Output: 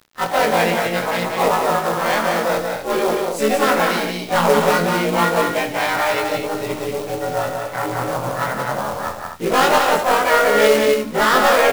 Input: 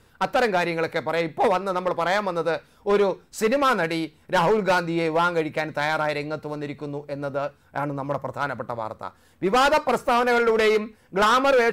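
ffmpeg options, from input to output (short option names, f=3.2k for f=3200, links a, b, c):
-filter_complex "[0:a]afftfilt=real='re':imag='-im':win_size=2048:overlap=0.75,bandreject=f=50:t=h:w=6,bandreject=f=100:t=h:w=6,bandreject=f=150:t=h:w=6,bandreject=f=200:t=h:w=6,bandreject=f=250:t=h:w=6,bandreject=f=300:t=h:w=6,bandreject=f=350:t=h:w=6,areverse,acompressor=mode=upward:threshold=-26dB:ratio=2.5,areverse,acrusher=bits=7:mix=0:aa=0.000001,asplit=2[a][b];[b]asetrate=58866,aresample=44100,atempo=0.749154,volume=-5dB[c];[a][c]amix=inputs=2:normalize=0,acrusher=bits=3:mode=log:mix=0:aa=0.000001,aecho=1:1:64.14|180.8|247.8:0.251|0.631|0.398,volume=6dB"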